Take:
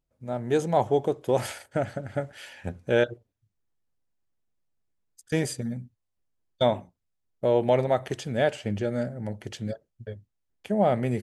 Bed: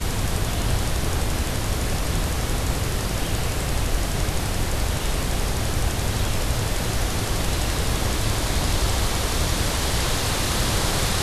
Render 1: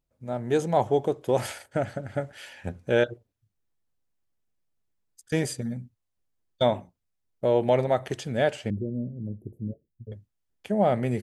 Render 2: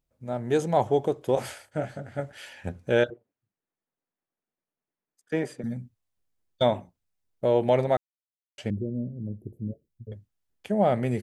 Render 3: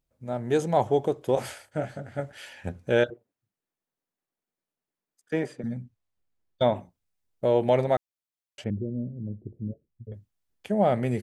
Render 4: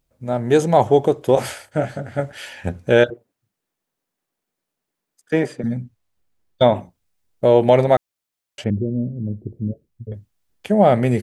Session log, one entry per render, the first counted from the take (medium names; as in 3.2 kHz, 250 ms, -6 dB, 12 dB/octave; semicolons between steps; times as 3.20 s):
8.70–10.12 s: inverse Chebyshev band-stop 1.6–5.1 kHz, stop band 80 dB
1.35–2.19 s: detune thickener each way 52 cents; 3.10–5.64 s: three-band isolator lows -24 dB, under 170 Hz, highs -15 dB, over 2.5 kHz; 7.97–8.58 s: mute
5.45–6.75 s: treble shelf 8.2 kHz -> 4.5 kHz -11 dB; 8.64–10.14 s: distance through air 490 m
trim +9 dB; peak limiter -3 dBFS, peak gain reduction 1.5 dB